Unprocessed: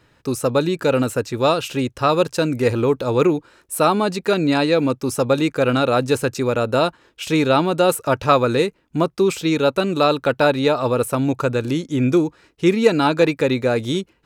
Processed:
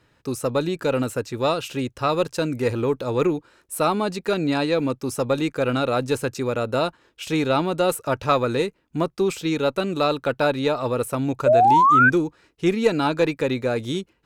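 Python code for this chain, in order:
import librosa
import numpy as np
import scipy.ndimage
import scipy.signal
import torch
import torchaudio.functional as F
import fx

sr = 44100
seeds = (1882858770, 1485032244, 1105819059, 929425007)

y = fx.cheby_harmonics(x, sr, harmonics=(4,), levels_db=(-29,), full_scale_db=-1.5)
y = fx.spec_paint(y, sr, seeds[0], shape='rise', start_s=11.46, length_s=0.64, low_hz=570.0, high_hz=1600.0, level_db=-10.0)
y = y * 10.0 ** (-4.5 / 20.0)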